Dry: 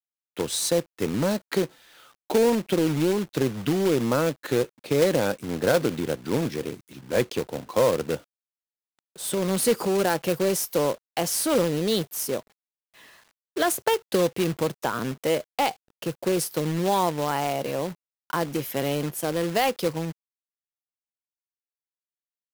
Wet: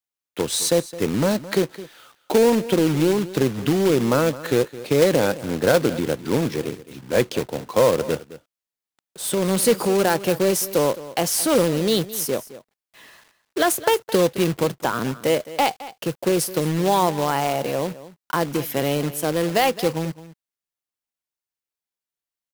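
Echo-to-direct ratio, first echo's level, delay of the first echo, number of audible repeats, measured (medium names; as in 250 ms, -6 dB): -16.5 dB, -16.5 dB, 214 ms, 1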